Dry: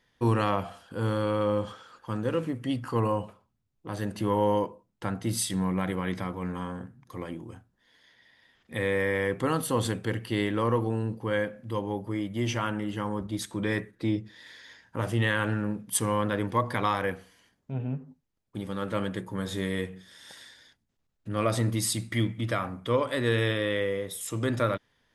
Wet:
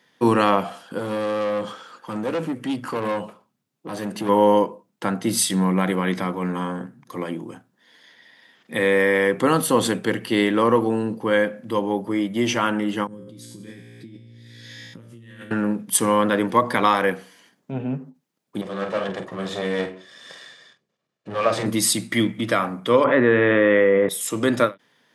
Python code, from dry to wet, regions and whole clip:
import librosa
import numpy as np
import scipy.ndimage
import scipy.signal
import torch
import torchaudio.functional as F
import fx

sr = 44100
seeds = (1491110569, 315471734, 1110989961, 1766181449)

y = fx.chain(x, sr, fx.highpass(hz=62.0, slope=12),
    fx.tube_stage(drive_db=29.0, bias=0.3), at=(0.98, 4.29))
y = fx.chain(y, sr, fx.tone_stack(knobs='10-0-1'),
    fx.comb_fb(f0_hz=58.0, decay_s=1.2, harmonics='all', damping=0.0, mix_pct=90),
    fx.env_flatten(amount_pct=100), at=(13.07, 15.51))
y = fx.chain(y, sr, fx.lower_of_two(delay_ms=1.7),
    fx.air_absorb(metres=87.0),
    fx.doubler(ms=46.0, db=-9), at=(18.61, 21.66))
y = fx.chain(y, sr, fx.lowpass(hz=2200.0, slope=24),
    fx.env_flatten(amount_pct=70), at=(23.04, 24.09))
y = scipy.signal.sosfilt(scipy.signal.butter(4, 160.0, 'highpass', fs=sr, output='sos'), y)
y = fx.end_taper(y, sr, db_per_s=310.0)
y = y * 10.0 ** (9.0 / 20.0)